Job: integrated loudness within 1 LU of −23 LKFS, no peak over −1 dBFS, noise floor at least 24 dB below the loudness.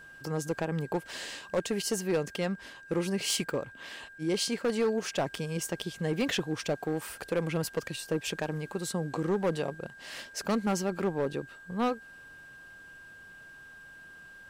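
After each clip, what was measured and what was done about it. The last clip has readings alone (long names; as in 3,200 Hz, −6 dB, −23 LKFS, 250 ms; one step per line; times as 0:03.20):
share of clipped samples 1.2%; peaks flattened at −22.5 dBFS; interfering tone 1,600 Hz; level of the tone −48 dBFS; integrated loudness −32.5 LKFS; sample peak −22.5 dBFS; target loudness −23.0 LKFS
→ clipped peaks rebuilt −22.5 dBFS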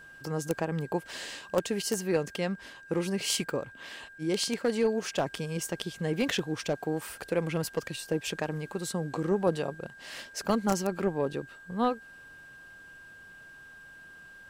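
share of clipped samples 0.0%; interfering tone 1,600 Hz; level of the tone −48 dBFS
→ notch filter 1,600 Hz, Q 30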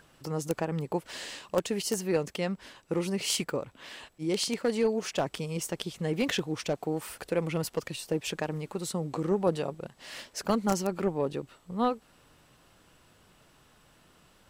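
interfering tone none found; integrated loudness −31.5 LKFS; sample peak −13.5 dBFS; target loudness −23.0 LKFS
→ level +8.5 dB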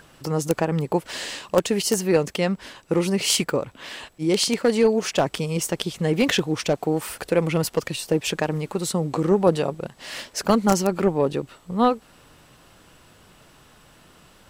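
integrated loudness −23.0 LKFS; sample peak −5.0 dBFS; background noise floor −54 dBFS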